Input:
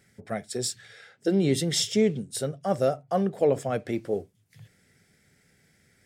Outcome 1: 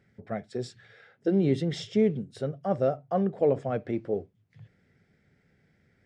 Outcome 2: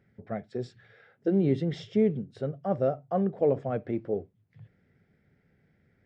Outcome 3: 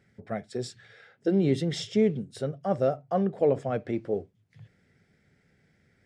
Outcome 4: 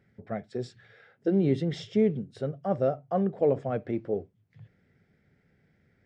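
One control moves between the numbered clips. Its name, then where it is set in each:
head-to-tape spacing loss, at 10 kHz: 28, 45, 20, 37 decibels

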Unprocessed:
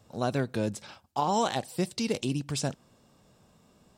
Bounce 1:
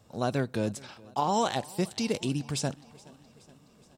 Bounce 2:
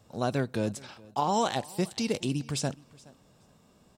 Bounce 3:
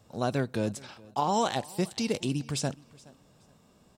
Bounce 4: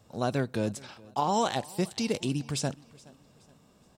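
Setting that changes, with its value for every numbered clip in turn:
repeating echo, feedback: 60, 18, 26, 39%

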